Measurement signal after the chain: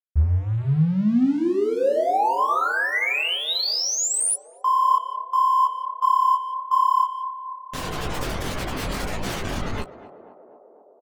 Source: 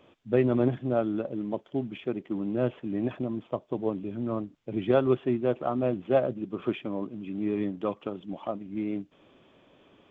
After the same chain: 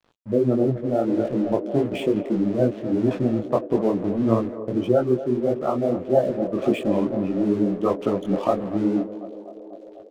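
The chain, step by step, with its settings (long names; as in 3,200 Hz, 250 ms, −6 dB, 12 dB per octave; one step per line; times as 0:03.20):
gate on every frequency bin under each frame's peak −20 dB strong
in parallel at +1 dB: downward compressor, threshold −37 dBFS
on the sum: far-end echo of a speakerphone 170 ms, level −20 dB
dead-zone distortion −46 dBFS
on a send: feedback echo with a band-pass in the loop 247 ms, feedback 81%, band-pass 540 Hz, level −12 dB
on the sum: speech leveller within 5 dB 0.5 s
micro pitch shift up and down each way 56 cents
level +9 dB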